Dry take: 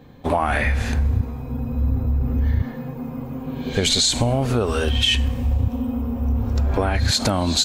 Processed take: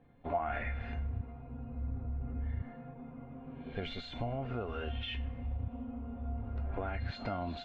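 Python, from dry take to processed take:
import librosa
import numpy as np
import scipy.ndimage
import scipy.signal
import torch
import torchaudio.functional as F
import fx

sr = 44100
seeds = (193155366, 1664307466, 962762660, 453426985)

y = scipy.signal.sosfilt(scipy.signal.butter(4, 2700.0, 'lowpass', fs=sr, output='sos'), x)
y = fx.comb_fb(y, sr, f0_hz=700.0, decay_s=0.32, harmonics='all', damping=0.0, mix_pct=90)
y = y * 10.0 ** (1.0 / 20.0)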